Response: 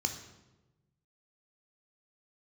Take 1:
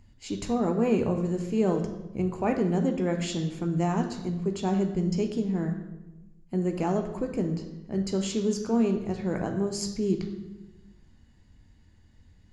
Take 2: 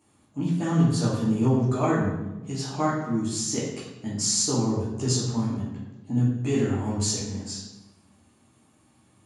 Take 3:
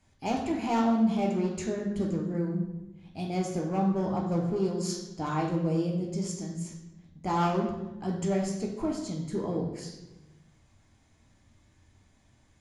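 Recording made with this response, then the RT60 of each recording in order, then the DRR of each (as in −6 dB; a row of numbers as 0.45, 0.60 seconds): 1; 1.1, 1.1, 1.1 seconds; 4.5, −7.5, −0.5 decibels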